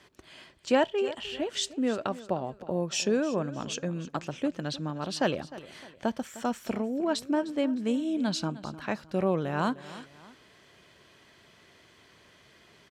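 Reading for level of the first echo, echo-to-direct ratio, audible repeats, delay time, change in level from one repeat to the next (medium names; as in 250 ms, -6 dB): -17.0 dB, -16.5 dB, 2, 306 ms, -7.5 dB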